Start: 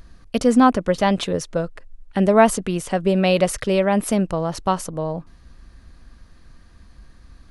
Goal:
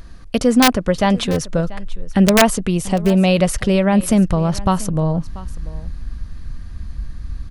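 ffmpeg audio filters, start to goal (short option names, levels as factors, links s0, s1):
-filter_complex "[0:a]asettb=1/sr,asplit=3[s0][s1][s2];[s0]atrim=end=2.704[s3];[s1]atrim=start=2.7:end=3.28,asetpts=PTS-STARTPTS,afade=t=in:d=0.004:c=qsin,afade=t=out:st=0.576:d=0.004:c=qsin,equalizer=f=1600:w=2.8:g=-9[s4];[s2]atrim=start=3.276[s5];[s3][s4]acrossfade=d=0.004:c1=hsin:c2=qsin[s6];[s6][s5]acrossfade=d=0.004:c1=qsin:c2=hsin,asplit=2[s7][s8];[s8]acompressor=threshold=0.0501:ratio=8,volume=1.12[s9];[s7][s9]amix=inputs=2:normalize=0,asubboost=boost=4:cutoff=210,aeval=exprs='(mod(1.41*val(0)+1,2)-1)/1.41':c=same,aecho=1:1:687:0.112"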